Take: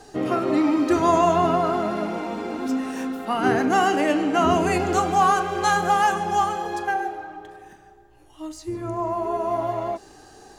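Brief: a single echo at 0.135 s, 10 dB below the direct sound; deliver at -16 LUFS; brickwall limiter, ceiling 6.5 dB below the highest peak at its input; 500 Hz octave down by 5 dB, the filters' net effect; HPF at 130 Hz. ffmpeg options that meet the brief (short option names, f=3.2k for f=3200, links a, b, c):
-af "highpass=130,equalizer=f=500:t=o:g=-8,alimiter=limit=-15.5dB:level=0:latency=1,aecho=1:1:135:0.316,volume=10dB"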